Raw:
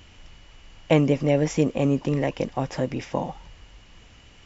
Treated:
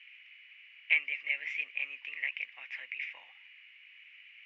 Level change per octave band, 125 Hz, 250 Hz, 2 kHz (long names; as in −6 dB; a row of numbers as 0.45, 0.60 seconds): below −40 dB, below −40 dB, +5.0 dB